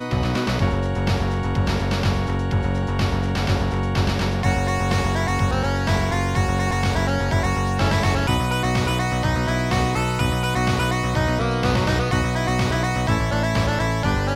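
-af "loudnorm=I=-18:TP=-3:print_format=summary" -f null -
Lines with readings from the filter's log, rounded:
Input Integrated:    -21.4 LUFS
Input True Peak:      -8.0 dBTP
Input LRA:             1.3 LU
Input Threshold:     -31.4 LUFS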